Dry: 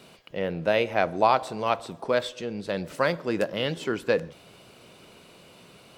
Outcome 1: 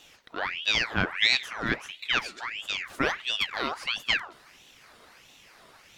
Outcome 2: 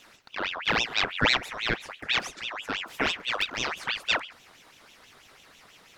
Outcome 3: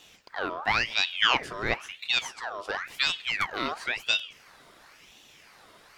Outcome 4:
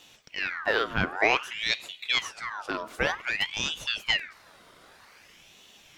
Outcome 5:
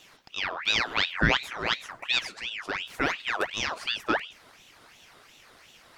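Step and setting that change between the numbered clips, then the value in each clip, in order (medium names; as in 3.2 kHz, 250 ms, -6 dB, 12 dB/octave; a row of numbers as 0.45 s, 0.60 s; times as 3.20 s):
ring modulator with a swept carrier, at: 1.5 Hz, 6.1 Hz, 0.96 Hz, 0.53 Hz, 2.8 Hz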